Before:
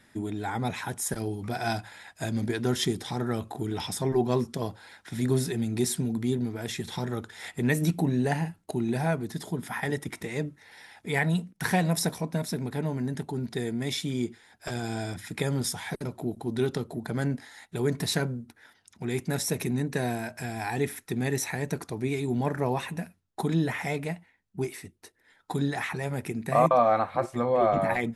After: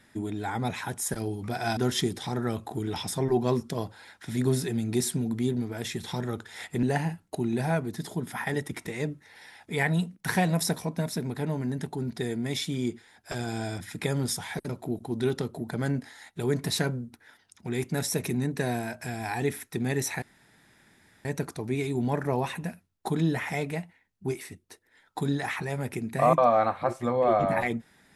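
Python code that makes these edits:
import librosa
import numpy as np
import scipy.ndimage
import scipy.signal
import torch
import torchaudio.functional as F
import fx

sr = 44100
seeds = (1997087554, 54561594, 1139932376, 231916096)

y = fx.edit(x, sr, fx.cut(start_s=1.77, length_s=0.84),
    fx.cut(start_s=7.67, length_s=0.52),
    fx.insert_room_tone(at_s=21.58, length_s=1.03), tone=tone)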